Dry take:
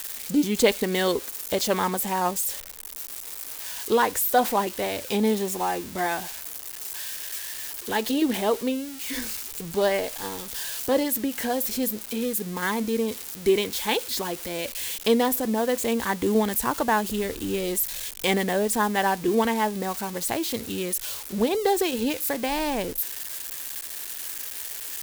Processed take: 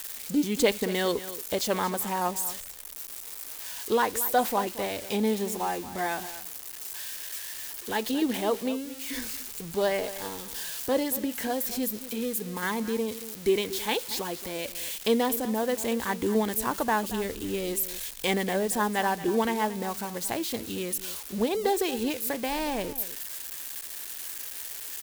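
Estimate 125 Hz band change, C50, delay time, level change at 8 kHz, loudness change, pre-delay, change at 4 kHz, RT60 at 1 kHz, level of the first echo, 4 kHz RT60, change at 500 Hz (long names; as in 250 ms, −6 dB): −3.5 dB, no reverb audible, 228 ms, −3.5 dB, −3.5 dB, no reverb audible, −3.5 dB, no reverb audible, −14.5 dB, no reverb audible, −3.5 dB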